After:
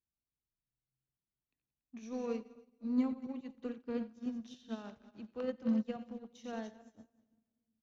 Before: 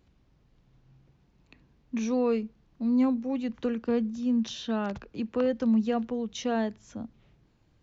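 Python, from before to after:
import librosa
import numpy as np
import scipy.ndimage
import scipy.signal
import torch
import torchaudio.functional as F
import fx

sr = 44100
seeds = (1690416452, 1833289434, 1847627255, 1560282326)

p1 = fx.reverse_delay_fb(x, sr, ms=142, feedback_pct=56, wet_db=-9.5)
p2 = 10.0 ** (-32.0 / 20.0) * np.tanh(p1 / 10.0 ** (-32.0 / 20.0))
p3 = p1 + F.gain(torch.from_numpy(p2), -8.0).numpy()
p4 = fx.high_shelf(p3, sr, hz=5300.0, db=4.0)
p5 = fx.echo_split(p4, sr, split_hz=310.0, low_ms=370, high_ms=89, feedback_pct=52, wet_db=-11.0)
p6 = fx.upward_expand(p5, sr, threshold_db=-40.0, expansion=2.5)
y = F.gain(torch.from_numpy(p6), -7.0).numpy()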